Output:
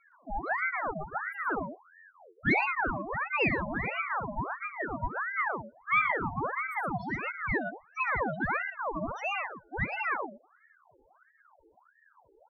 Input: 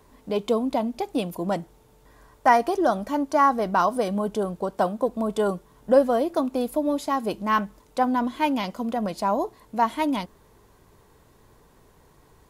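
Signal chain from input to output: 1.46–2.65 comb 5.3 ms, depth 78%; in parallel at 0 dB: compressor, threshold -35 dBFS, peak gain reduction 24 dB; on the sum: loudest bins only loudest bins 1; soft clip -15 dBFS, distortion -22 dB; on a send: loudspeakers at several distances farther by 24 m -11 dB, 40 m -7 dB; on the sum: ring modulator with a swept carrier 1100 Hz, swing 65%, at 1.5 Hz

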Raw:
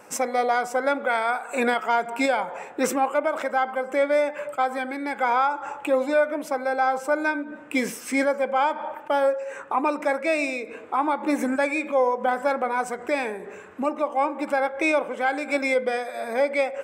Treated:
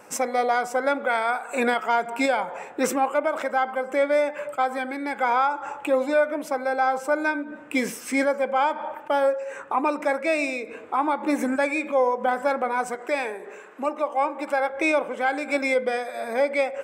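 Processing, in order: 12.95–14.7 HPF 330 Hz 12 dB/oct

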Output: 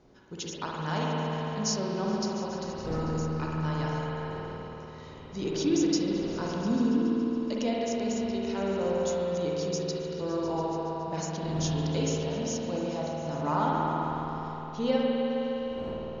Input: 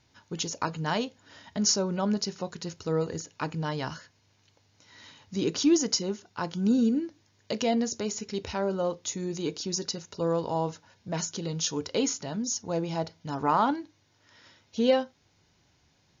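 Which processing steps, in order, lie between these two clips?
wind noise 420 Hz -45 dBFS; repeats that get brighter 0.14 s, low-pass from 750 Hz, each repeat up 1 oct, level -6 dB; spring tank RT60 3.5 s, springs 51 ms, chirp 25 ms, DRR -3.5 dB; gain -6.5 dB

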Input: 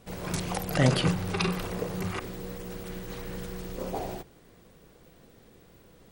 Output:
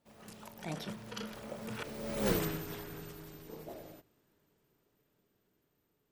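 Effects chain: Doppler pass-by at 2.31, 57 m/s, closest 4 m; low shelf 80 Hz -11 dB; gain +12 dB

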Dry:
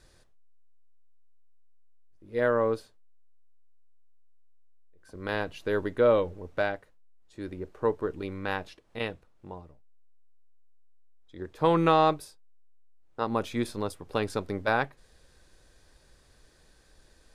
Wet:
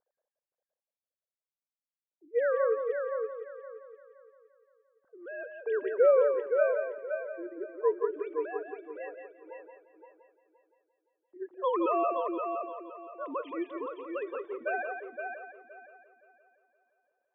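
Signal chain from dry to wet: sine-wave speech; low-pass opened by the level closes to 500 Hz, open at -24.5 dBFS; multi-head echo 0.173 s, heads first and third, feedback 41%, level -6 dB; gain -3.5 dB

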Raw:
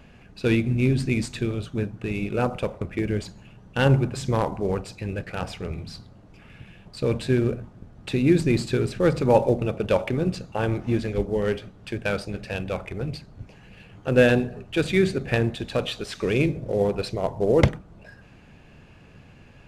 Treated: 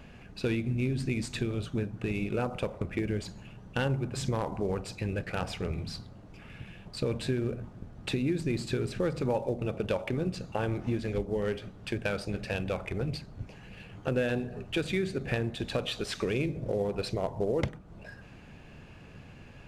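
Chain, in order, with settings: compressor 4:1, threshold -28 dBFS, peak gain reduction 14 dB

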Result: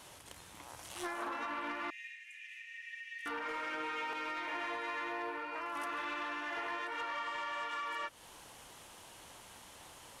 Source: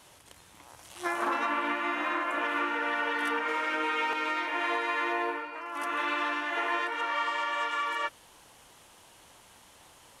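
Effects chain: compressor, threshold -37 dBFS, peak gain reduction 11.5 dB; 1.9–3.26 rippled Chebyshev high-pass 1800 Hz, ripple 9 dB; soft clip -32.5 dBFS, distortion -19 dB; gain +1.5 dB

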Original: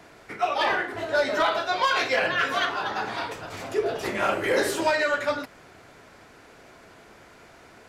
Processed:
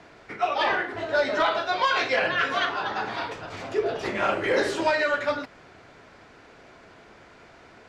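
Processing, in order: LPF 5500 Hz 12 dB/oct

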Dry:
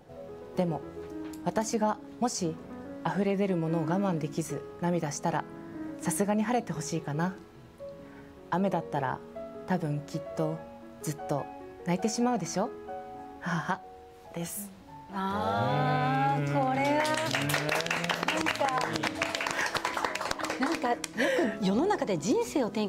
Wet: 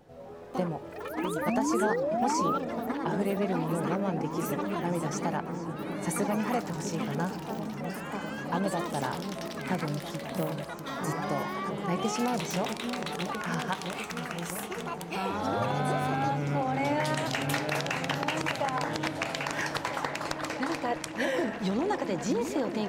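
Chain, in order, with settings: painted sound rise, 1.47–2.58, 210–1400 Hz -27 dBFS; echoes that change speed 0.135 s, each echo +6 st, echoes 3, each echo -6 dB; repeats that get brighter 0.65 s, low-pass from 400 Hz, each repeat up 1 oct, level -6 dB; gain -2.5 dB

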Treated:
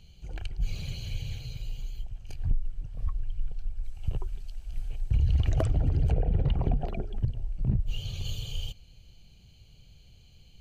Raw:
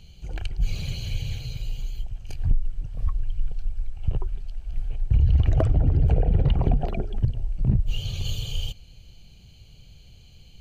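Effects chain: 3.83–6.1 high shelf 4200 Hz -> 2800 Hz +12 dB; gain -5.5 dB

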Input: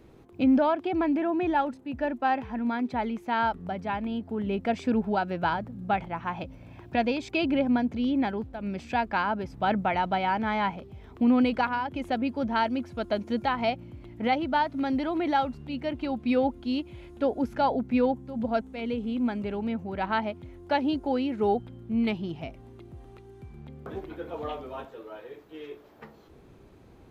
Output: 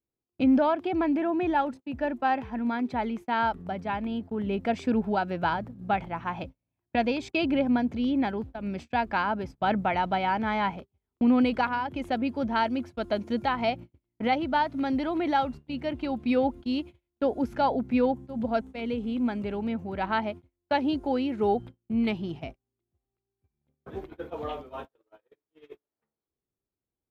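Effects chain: gate -38 dBFS, range -39 dB

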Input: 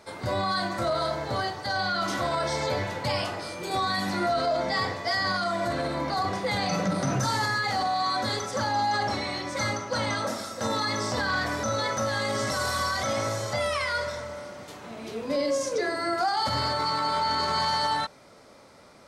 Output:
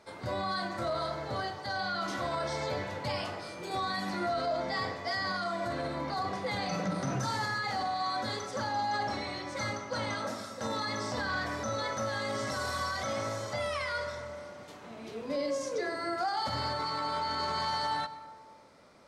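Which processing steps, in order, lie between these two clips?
high shelf 7800 Hz -6.5 dB; notches 50/100 Hz; on a send: reverb RT60 1.6 s, pre-delay 88 ms, DRR 14.5 dB; on the sum: gain -6 dB

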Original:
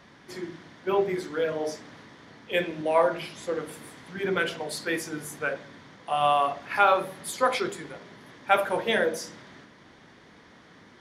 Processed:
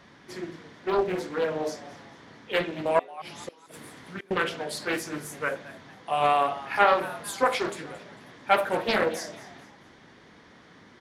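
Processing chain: 2.99–4.31 flipped gate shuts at -25 dBFS, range -30 dB; frequency-shifting echo 0.223 s, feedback 38%, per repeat +110 Hz, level -17.5 dB; Doppler distortion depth 0.47 ms

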